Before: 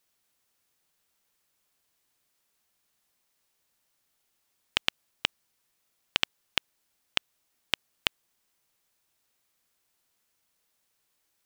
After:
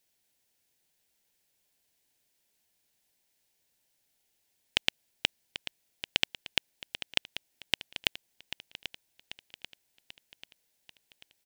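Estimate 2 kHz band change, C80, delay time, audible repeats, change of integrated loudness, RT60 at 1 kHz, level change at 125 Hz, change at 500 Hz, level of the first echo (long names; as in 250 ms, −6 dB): −0.5 dB, no reverb audible, 789 ms, 5, −2.0 dB, no reverb audible, +0.5 dB, −0.5 dB, −12.0 dB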